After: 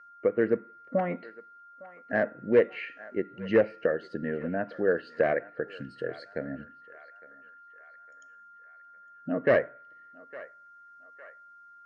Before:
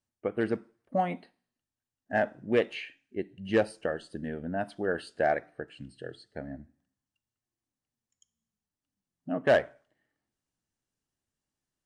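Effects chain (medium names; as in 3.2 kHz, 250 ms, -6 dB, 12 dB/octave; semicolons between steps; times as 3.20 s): one-sided wavefolder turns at -19.5 dBFS; in parallel at -1.5 dB: compression, threshold -39 dBFS, peak gain reduction 18.5 dB; on the sum: whistle 1.4 kHz -50 dBFS; low-pass that closes with the level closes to 2 kHz, closed at -26.5 dBFS; cabinet simulation 130–6400 Hz, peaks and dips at 490 Hz +7 dB, 800 Hz -9 dB, 1.9 kHz +6 dB, 3.4 kHz -9 dB; on a send: band-passed feedback delay 858 ms, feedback 58%, band-pass 1.4 kHz, level -16.5 dB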